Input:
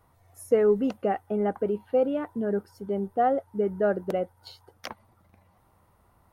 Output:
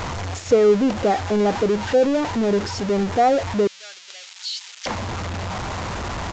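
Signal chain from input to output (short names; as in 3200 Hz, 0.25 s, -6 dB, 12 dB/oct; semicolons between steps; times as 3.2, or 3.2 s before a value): zero-crossing step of -26 dBFS; 3.67–4.86 Butterworth band-pass 5600 Hz, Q 0.79; downsampling 16000 Hz; gain +4.5 dB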